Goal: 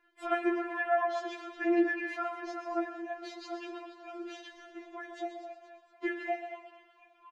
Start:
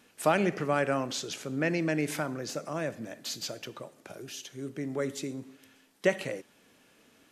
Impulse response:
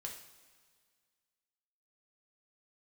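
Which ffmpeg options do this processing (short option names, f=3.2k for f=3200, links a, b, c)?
-filter_complex "[0:a]asplit=2[a][b];[b]acompressor=threshold=-41dB:ratio=6,volume=1.5dB[c];[a][c]amix=inputs=2:normalize=0,agate=range=-9dB:threshold=-45dB:ratio=16:detection=peak,lowpass=1.9k,lowshelf=f=230:g=-4.5,bandreject=f=50:t=h:w=6,bandreject=f=100:t=h:w=6,bandreject=f=150:t=h:w=6,bandreject=f=200:t=h:w=6,bandreject=f=250:t=h:w=6,bandreject=f=300:t=h:w=6,bandreject=f=350:t=h:w=6,asplit=6[d][e][f][g][h][i];[e]adelay=237,afreqshift=130,volume=-12.5dB[j];[f]adelay=474,afreqshift=260,volume=-18.5dB[k];[g]adelay=711,afreqshift=390,volume=-24.5dB[l];[h]adelay=948,afreqshift=520,volume=-30.6dB[m];[i]adelay=1185,afreqshift=650,volume=-36.6dB[n];[d][j][k][l][m][n]amix=inputs=6:normalize=0,asplit=2[o][p];[1:a]atrim=start_sample=2205,adelay=128[q];[p][q]afir=irnorm=-1:irlink=0,volume=-6dB[r];[o][r]amix=inputs=2:normalize=0,afftfilt=real='re*4*eq(mod(b,16),0)':imag='im*4*eq(mod(b,16),0)':win_size=2048:overlap=0.75"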